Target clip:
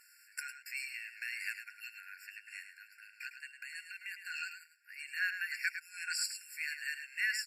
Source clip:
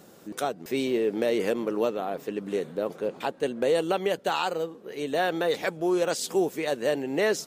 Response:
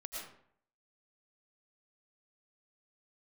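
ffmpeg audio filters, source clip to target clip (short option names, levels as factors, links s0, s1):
-filter_complex "[0:a]asettb=1/sr,asplit=3[s0][s1][s2];[s0]atrim=end=2.694[s3];[s1]atrim=start=2.69:end=4.83,asetpts=PTS-STARTPTS,afade=t=in:d=0.004:c=qsin,afade=t=out:st=2.136:d=0.004:c=qsin,acompressor=threshold=0.0178:ratio=1.5[s4];[s2]atrim=start=4.826[s5];[s3][s4]acrossfade=d=0.004:c1=hsin:c2=qsin[s6];[s6][s5]acrossfade=d=0.004:c1=qsin:c2=hsin,aecho=1:1:105:0.355,afftfilt=real='re*eq(mod(floor(b*sr/1024/1400),2),1)':imag='im*eq(mod(floor(b*sr/1024/1400),2),1)':win_size=1024:overlap=0.75,volume=0.891"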